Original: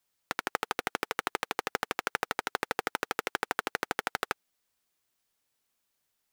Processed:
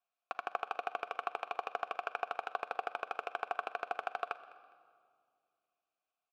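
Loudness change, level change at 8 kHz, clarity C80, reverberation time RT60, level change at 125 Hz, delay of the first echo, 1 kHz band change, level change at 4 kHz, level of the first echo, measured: −6.0 dB, below −20 dB, 15.0 dB, 2.2 s, below −20 dB, 205 ms, −3.0 dB, −13.5 dB, −20.5 dB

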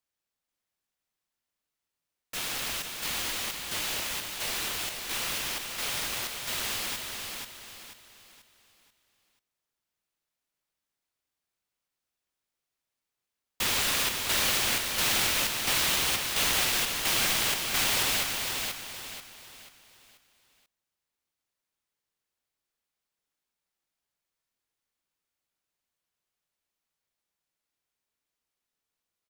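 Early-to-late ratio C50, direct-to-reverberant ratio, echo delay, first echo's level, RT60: no reverb audible, no reverb audible, 486 ms, −5.0 dB, no reverb audible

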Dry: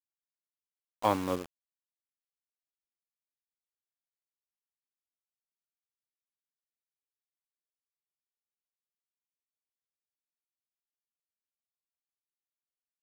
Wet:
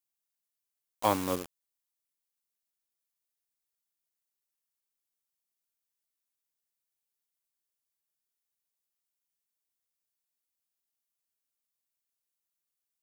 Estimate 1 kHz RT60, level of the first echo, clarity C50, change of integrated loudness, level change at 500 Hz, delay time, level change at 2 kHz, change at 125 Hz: no reverb audible, no echo audible, no reverb audible, +0.5 dB, 0.0 dB, no echo audible, +1.0 dB, 0.0 dB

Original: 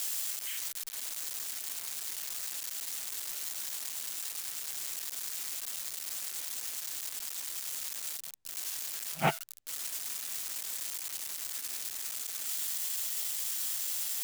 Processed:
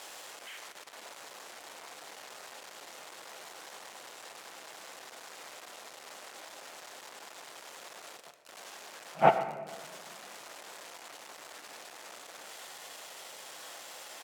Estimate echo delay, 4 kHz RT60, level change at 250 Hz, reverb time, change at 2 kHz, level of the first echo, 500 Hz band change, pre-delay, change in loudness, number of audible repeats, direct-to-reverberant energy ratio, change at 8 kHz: 121 ms, 0.85 s, +1.0 dB, 1.7 s, 0.0 dB, −15.0 dB, +10.0 dB, 6 ms, −5.5 dB, 1, 9.0 dB, −13.5 dB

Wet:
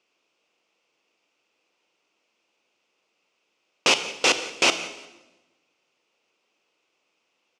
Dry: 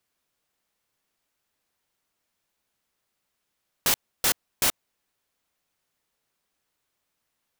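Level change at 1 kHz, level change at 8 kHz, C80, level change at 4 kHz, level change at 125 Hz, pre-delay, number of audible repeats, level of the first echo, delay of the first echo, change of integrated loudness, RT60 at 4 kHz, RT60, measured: +7.5 dB, 0.0 dB, 12.0 dB, +8.0 dB, −3.0 dB, 31 ms, 2, −20.0 dB, 175 ms, +3.5 dB, 0.90 s, 1.0 s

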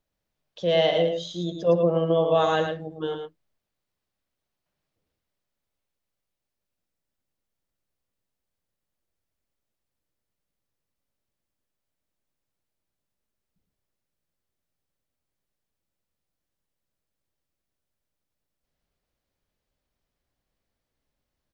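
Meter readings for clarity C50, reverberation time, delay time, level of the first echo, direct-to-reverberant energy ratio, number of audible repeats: no reverb audible, no reverb audible, 110 ms, −6.0 dB, no reverb audible, 1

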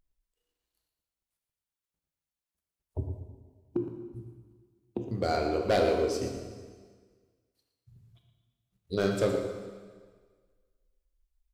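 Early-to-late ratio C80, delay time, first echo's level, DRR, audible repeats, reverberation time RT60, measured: 5.5 dB, 116 ms, −11.0 dB, 3.0 dB, 1, 1.6 s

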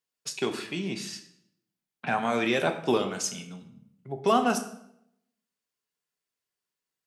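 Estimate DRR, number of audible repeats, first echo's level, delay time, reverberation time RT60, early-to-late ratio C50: 5.5 dB, no echo audible, no echo audible, no echo audible, 0.75 s, 10.5 dB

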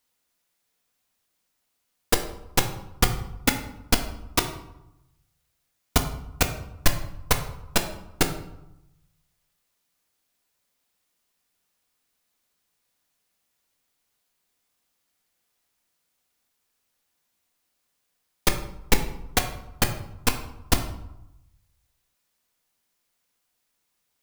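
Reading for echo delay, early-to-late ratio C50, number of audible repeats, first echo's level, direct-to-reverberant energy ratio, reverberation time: no echo audible, 9.5 dB, no echo audible, no echo audible, 5.0 dB, 0.90 s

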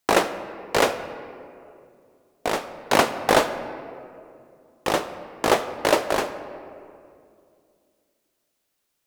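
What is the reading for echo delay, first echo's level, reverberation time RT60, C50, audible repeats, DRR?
no echo audible, no echo audible, 2.4 s, 11.0 dB, no echo audible, 10.5 dB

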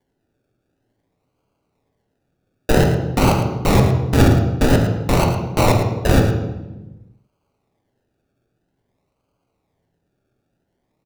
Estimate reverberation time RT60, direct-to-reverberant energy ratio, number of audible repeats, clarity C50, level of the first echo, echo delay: 1.1 s, 1.0 dB, 1, 4.5 dB, −10.5 dB, 109 ms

